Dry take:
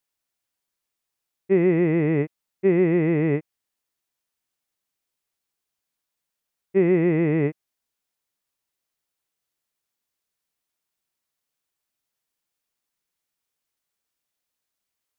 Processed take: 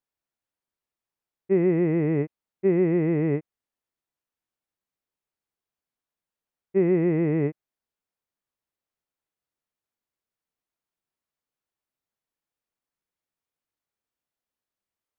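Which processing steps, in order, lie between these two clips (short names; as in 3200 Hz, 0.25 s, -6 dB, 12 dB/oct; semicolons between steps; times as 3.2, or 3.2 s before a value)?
high shelf 2300 Hz -11 dB; gain -2 dB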